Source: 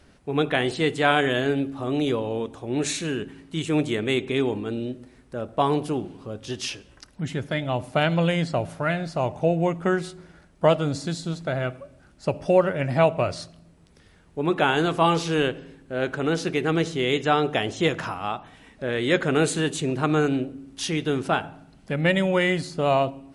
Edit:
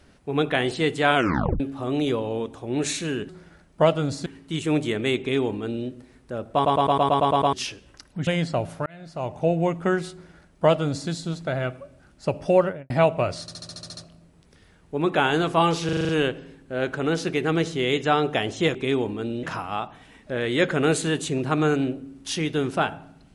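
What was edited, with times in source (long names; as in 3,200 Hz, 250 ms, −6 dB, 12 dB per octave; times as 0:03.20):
0:01.15: tape stop 0.45 s
0:04.22–0:04.90: duplicate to 0:17.95
0:05.57: stutter in place 0.11 s, 9 plays
0:07.30–0:08.27: remove
0:08.86–0:09.49: fade in
0:10.12–0:11.09: duplicate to 0:03.29
0:12.60–0:12.90: fade out and dull
0:13.41: stutter 0.07 s, 9 plays
0:15.29: stutter 0.04 s, 7 plays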